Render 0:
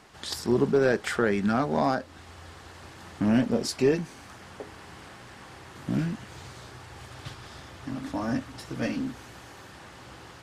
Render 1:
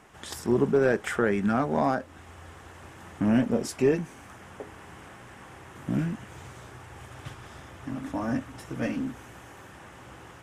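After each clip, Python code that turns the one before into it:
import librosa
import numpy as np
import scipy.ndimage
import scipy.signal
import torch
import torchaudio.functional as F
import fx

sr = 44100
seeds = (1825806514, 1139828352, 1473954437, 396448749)

y = fx.peak_eq(x, sr, hz=4400.0, db=-12.0, octaves=0.58)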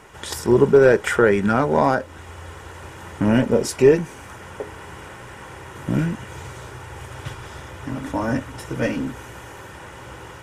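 y = x + 0.38 * np.pad(x, (int(2.1 * sr / 1000.0), 0))[:len(x)]
y = y * librosa.db_to_amplitude(8.0)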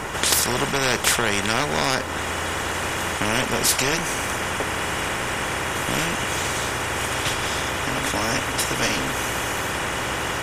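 y = fx.spectral_comp(x, sr, ratio=4.0)
y = y * librosa.db_to_amplitude(2.0)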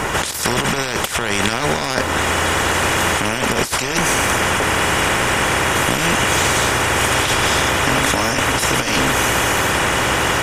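y = fx.over_compress(x, sr, threshold_db=-24.0, ratio=-0.5)
y = y * librosa.db_to_amplitude(7.5)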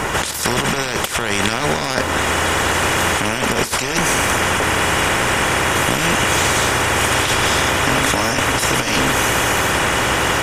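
y = x + 10.0 ** (-17.5 / 20.0) * np.pad(x, (int(158 * sr / 1000.0), 0))[:len(x)]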